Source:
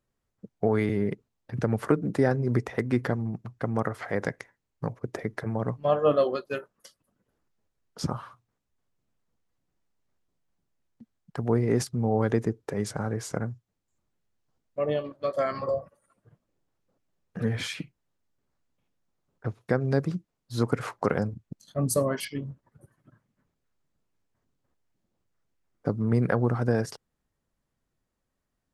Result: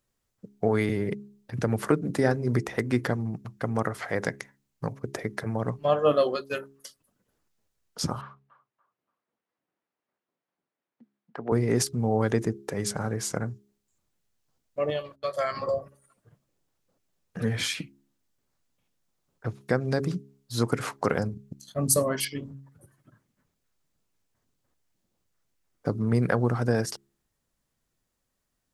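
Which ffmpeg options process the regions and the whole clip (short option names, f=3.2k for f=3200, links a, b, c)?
-filter_complex "[0:a]asettb=1/sr,asplit=3[a][b][c];[a]atrim=end=8.214[d];[b]atrim=start=8.21:end=11.52,asetpts=PTS-STARTPTS,afade=t=in:d=0.004:c=qsin,afade=t=out:st=3.306:d=0.004:c=qsin,highpass=290,lowpass=2.1k,asplit=2[e][f];[f]adelay=287,lowpass=f=1.5k:p=1,volume=-13dB,asplit=2[g][h];[h]adelay=287,lowpass=f=1.5k:p=1,volume=0.34,asplit=2[i][j];[j]adelay=287,lowpass=f=1.5k:p=1,volume=0.34[k];[e][g][i][k]amix=inputs=4:normalize=0,atrim=end_sample=145971[l];[c]atrim=start=11.516[m];[d][l]acrossfade=d=0.004:c1=hsin:c2=qsin[n];[n][m]acrossfade=d=0.004:c1=qsin:c2=hsin,asettb=1/sr,asplit=3[o][p][q];[o]atrim=end=14.904[r];[p]atrim=start=14.9:end=15.57,asetpts=PTS-STARTPTS,afade=t=in:d=0.004:c=qsin,afade=t=out:st=0.666:d=0.004:c=qsin,agate=range=-22dB:threshold=-50dB:ratio=16:release=100:detection=peak,equalizer=f=270:t=o:w=1:g=-13.5[s];[q]atrim=start=15.566[t];[r][s]acrossfade=d=0.004:c1=hsin:c2=qsin[u];[u][t]acrossfade=d=0.004:c1=qsin:c2=hsin,highshelf=f=2.9k:g=8.5,bandreject=f=68.43:t=h:w=4,bandreject=f=136.86:t=h:w=4,bandreject=f=205.29:t=h:w=4,bandreject=f=273.72:t=h:w=4,bandreject=f=342.15:t=h:w=4,bandreject=f=410.58:t=h:w=4"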